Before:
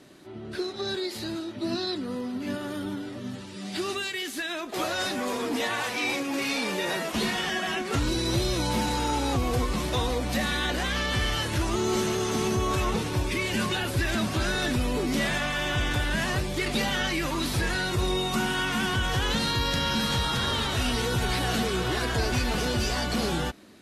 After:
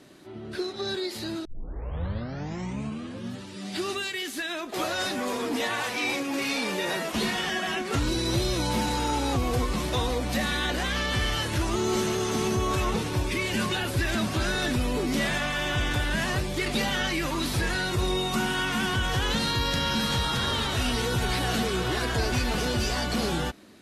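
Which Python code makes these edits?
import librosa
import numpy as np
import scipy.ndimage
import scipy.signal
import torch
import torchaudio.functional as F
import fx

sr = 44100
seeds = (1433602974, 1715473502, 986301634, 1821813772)

y = fx.edit(x, sr, fx.tape_start(start_s=1.45, length_s=1.92), tone=tone)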